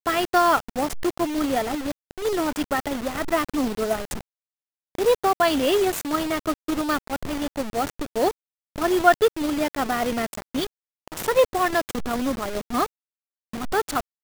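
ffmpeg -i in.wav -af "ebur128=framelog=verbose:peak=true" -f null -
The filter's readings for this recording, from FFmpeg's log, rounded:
Integrated loudness:
  I:         -24.0 LUFS
  Threshold: -34.4 LUFS
Loudness range:
  LRA:         2.6 LU
  Threshold: -44.6 LUFS
  LRA low:   -26.2 LUFS
  LRA high:  -23.6 LUFS
True peak:
  Peak:       -1.8 dBFS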